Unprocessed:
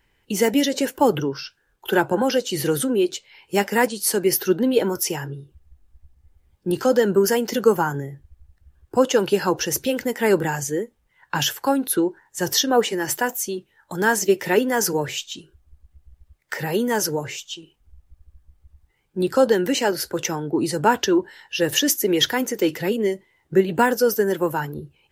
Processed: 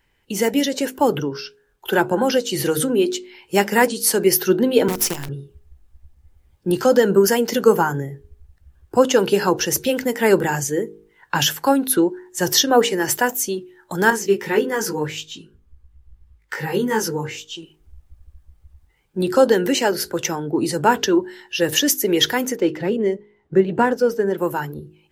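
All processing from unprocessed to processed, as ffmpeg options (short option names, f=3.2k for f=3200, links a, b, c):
-filter_complex "[0:a]asettb=1/sr,asplit=3[a][b][c];[a]atrim=end=4.884[d];[b]atrim=start=4.88:end=5.29,asetpts=PTS-STARTPTS,afade=t=in:d=0.004:c=qsin,afade=t=out:st=0.406:d=0.004:c=qsin,lowshelf=f=63:g=8.5,acrossover=split=320|3000[e][f][g];[f]acompressor=threshold=-40dB:ratio=2.5:attack=3.2:release=140:knee=2.83:detection=peak[h];[e][h][g]amix=inputs=3:normalize=0,acrusher=bits=5:dc=4:mix=0:aa=0.000001[i];[c]atrim=start=5.286[j];[d][i]acrossfade=d=0.004:c1=hsin:c2=qsin[k];[k][j]acrossfade=d=0.004:c1=qsin:c2=hsin,asettb=1/sr,asplit=3[l][m][n];[l]atrim=end=14.104[o];[m]atrim=start=14.1:end=17.55,asetpts=PTS-STARTPTS,afade=t=in:d=0.004:c=qsin,afade=t=out:st=3.446:d=0.004:c=qsin,asuperstop=centerf=650:order=4:qfactor=3.2,highshelf=f=3.9k:g=-6,flanger=delay=18:depth=2.1:speed=1.7[p];[n]atrim=start=17.546[q];[o][p]acrossfade=d=0.004:c1=hsin:c2=qsin[r];[r][q]acrossfade=d=0.004:c1=qsin:c2=hsin,asettb=1/sr,asplit=3[s][t][u];[s]atrim=end=22.564[v];[t]atrim=start=22.56:end=24.38,asetpts=PTS-STARTPTS,afade=t=in:d=0.004:c=qsin,afade=t=out:st=1.816:d=0.004:c=qsin,highshelf=f=2.2k:g=-10,adynamicsmooth=sensitivity=7.5:basefreq=6.9k[w];[u]atrim=start=24.376[x];[v][w]acrossfade=d=0.004:c1=hsin:c2=qsin[y];[y][x]acrossfade=d=0.004:c1=qsin:c2=hsin,bandreject=f=51.95:t=h:w=4,bandreject=f=103.9:t=h:w=4,bandreject=f=155.85:t=h:w=4,bandreject=f=207.8:t=h:w=4,bandreject=f=259.75:t=h:w=4,bandreject=f=311.7:t=h:w=4,bandreject=f=363.65:t=h:w=4,bandreject=f=415.6:t=h:w=4,bandreject=f=467.55:t=h:w=4,dynaudnorm=f=530:g=7:m=6dB"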